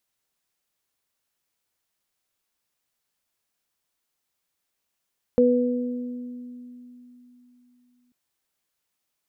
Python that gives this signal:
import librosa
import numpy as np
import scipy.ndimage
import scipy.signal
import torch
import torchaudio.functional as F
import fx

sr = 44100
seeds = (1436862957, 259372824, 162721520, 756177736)

y = fx.additive(sr, length_s=2.74, hz=246.0, level_db=-18.0, upper_db=(4,), decay_s=3.6, upper_decays_s=(1.53,))